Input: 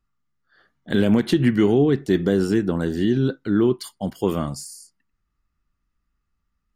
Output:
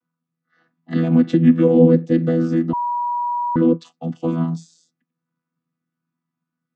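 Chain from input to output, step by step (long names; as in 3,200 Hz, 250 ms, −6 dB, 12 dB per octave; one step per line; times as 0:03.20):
channel vocoder with a chord as carrier bare fifth, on E3
0:01.25–0:01.70: notch filter 4,500 Hz, Q 11
0:02.73–0:03.56: beep over 965 Hz −23.5 dBFS
level +4.5 dB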